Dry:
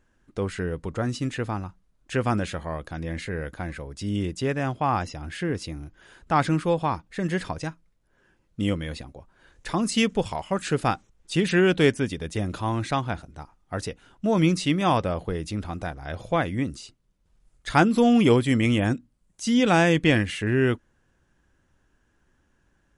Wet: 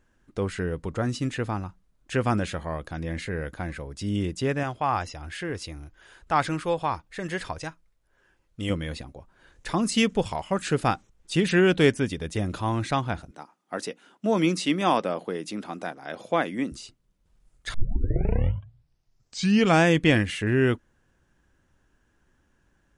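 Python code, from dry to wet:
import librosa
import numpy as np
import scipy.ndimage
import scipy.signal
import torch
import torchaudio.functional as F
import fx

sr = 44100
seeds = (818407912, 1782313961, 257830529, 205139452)

y = fx.peak_eq(x, sr, hz=200.0, db=-8.5, octaves=1.7, at=(4.63, 8.7))
y = fx.highpass(y, sr, hz=200.0, slope=24, at=(13.31, 16.72))
y = fx.edit(y, sr, fx.tape_start(start_s=17.74, length_s=2.1), tone=tone)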